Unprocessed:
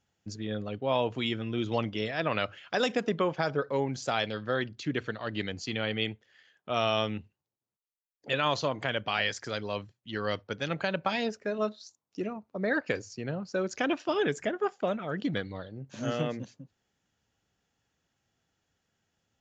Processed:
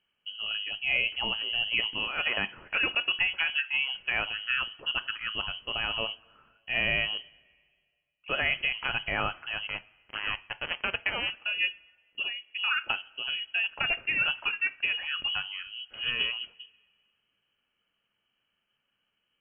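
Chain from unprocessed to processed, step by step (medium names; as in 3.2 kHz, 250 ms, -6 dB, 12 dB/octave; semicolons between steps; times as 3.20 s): 9.67–11.30 s: small samples zeroed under -28.5 dBFS; frequency inversion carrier 3.1 kHz; two-slope reverb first 0.28 s, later 1.9 s, from -20 dB, DRR 12 dB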